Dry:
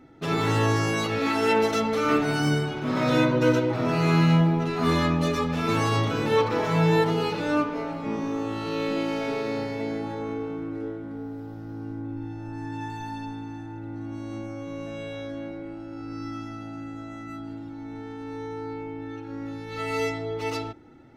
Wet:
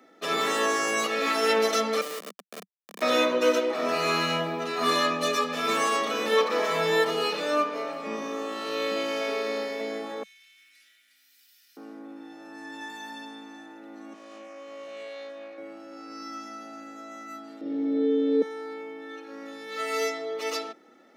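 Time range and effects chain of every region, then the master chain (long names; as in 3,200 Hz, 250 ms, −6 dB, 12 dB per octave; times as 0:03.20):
0:02.01–0:03.02: pair of resonant band-passes 680 Hz, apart 1 octave + comparator with hysteresis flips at −29.5 dBFS
0:10.23–0:11.77: inverse Chebyshev high-pass filter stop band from 1,100 Hz + downward compressor 4 to 1, threshold −57 dBFS + high-shelf EQ 6,000 Hz +9 dB
0:14.13–0:15.58: high-pass filter 640 Hz 6 dB per octave + high-shelf EQ 2,000 Hz −8 dB + highs frequency-modulated by the lows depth 0.18 ms
0:17.61–0:18.42: low-pass filter 4,000 Hz + low shelf with overshoot 670 Hz +8.5 dB, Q 3 + flutter between parallel walls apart 7.4 metres, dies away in 1.1 s
whole clip: Butterworth high-pass 190 Hz 72 dB per octave; spectral tilt +1.5 dB per octave; comb filter 1.7 ms, depth 50%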